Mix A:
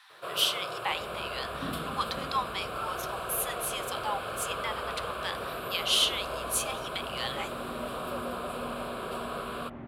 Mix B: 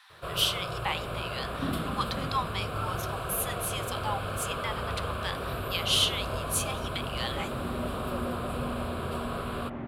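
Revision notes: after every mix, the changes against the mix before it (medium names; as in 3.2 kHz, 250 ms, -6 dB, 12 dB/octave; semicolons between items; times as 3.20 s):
first sound: remove high-pass 300 Hz 12 dB/octave; second sound +5.5 dB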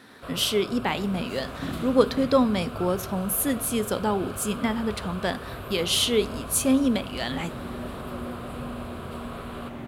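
speech: remove rippled Chebyshev high-pass 770 Hz, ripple 6 dB; first sound -4.0 dB; second sound: remove low-pass 2.1 kHz 12 dB/octave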